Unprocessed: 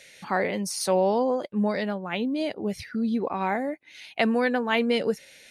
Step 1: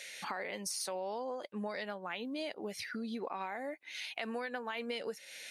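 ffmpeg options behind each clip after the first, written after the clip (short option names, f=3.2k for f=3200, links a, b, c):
-af "highpass=f=850:p=1,alimiter=limit=-21dB:level=0:latency=1:release=80,acompressor=threshold=-42dB:ratio=4,volume=4dB"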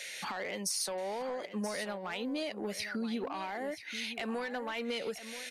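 -filter_complex "[0:a]acrossover=split=310|3400[a][b][c];[b]asoftclip=type=tanh:threshold=-37.5dB[d];[a][d][c]amix=inputs=3:normalize=0,aecho=1:1:980:0.251,volume=4.5dB"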